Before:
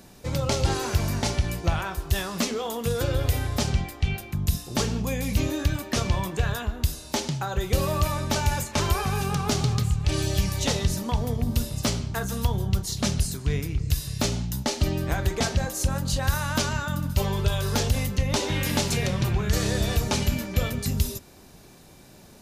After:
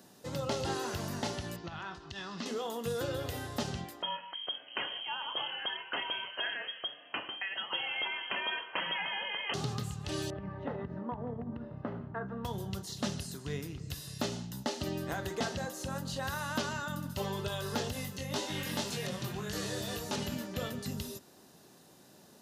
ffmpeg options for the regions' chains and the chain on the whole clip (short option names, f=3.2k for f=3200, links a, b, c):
-filter_complex "[0:a]asettb=1/sr,asplit=3[a][b][c];[a]atrim=end=1.564[d];[b]atrim=start=1.56:end=2.46,asetpts=PTS-STARTPTS,afade=t=in:d=0.004:c=qsin,afade=t=out:st=0.896:d=0.004:c=qsin,lowpass=f=5.3k:w=0.5412,lowpass=f=5.3k:w=1.3066,acompressor=threshold=-28dB:ratio=2.5:attack=3.2:release=140:knee=1:detection=peak,equalizer=f=550:w=1.8:g=-8.5[e];[c]atrim=start=2.456[f];[d][e]acrossfade=d=0.004:c1=hsin:c2=qsin[g];[g][f]acrossfade=d=0.004:c1=qsin:c2=hsin,asettb=1/sr,asplit=3[h][i][j];[h]atrim=end=4.024[k];[i]atrim=start=4.02:end=9.54,asetpts=PTS-STARTPTS,afade=t=in:d=0.004:c=qsin,afade=t=out:st=5.516:d=0.004:c=qsin,tiltshelf=f=880:g=-8.5,lowpass=f=2.8k:t=q:w=0.5098,lowpass=f=2.8k:t=q:w=0.6013,lowpass=f=2.8k:t=q:w=0.9,lowpass=f=2.8k:t=q:w=2.563,afreqshift=-3300[l];[j]atrim=start=9.536[m];[k][l]acrossfade=d=0.004:c1=hsin:c2=qsin[n];[n][m]acrossfade=d=0.004:c1=qsin:c2=hsin,asettb=1/sr,asplit=3[o][p][q];[o]atrim=end=10.304[r];[p]atrim=start=10.3:end=12.45,asetpts=PTS-STARTPTS,afade=t=in:d=0.004:c=qsin,afade=t=out:st=2.146:d=0.004:c=qsin,lowpass=f=1.7k:w=0.5412,lowpass=f=1.7k:w=1.3066,acompressor=threshold=-23dB:ratio=6:attack=3.2:release=140:knee=1:detection=peak[s];[q]atrim=start=12.446[t];[r][s]acrossfade=d=0.004:c1=hsin:c2=qsin[u];[u][t]acrossfade=d=0.004:c1=qsin:c2=hsin,asettb=1/sr,asplit=3[v][w][x];[v]atrim=end=17.934[y];[w]atrim=start=17.93:end=20.16,asetpts=PTS-STARTPTS,afade=t=in:d=0.004:c=qsin,afade=t=out:st=2.226:d=0.004:c=qsin,highshelf=f=5.2k:g=11.5,flanger=delay=19:depth=3.4:speed=1.9[z];[x]atrim=start=20.156[aa];[y][z]acrossfade=d=0.004:c1=hsin:c2=qsin[ab];[ab][aa]acrossfade=d=0.004:c1=qsin:c2=hsin,highpass=170,acrossover=split=4300[ac][ad];[ad]acompressor=threshold=-38dB:ratio=4:attack=1:release=60[ae];[ac][ae]amix=inputs=2:normalize=0,bandreject=f=2.3k:w=7.1,volume=-6.5dB"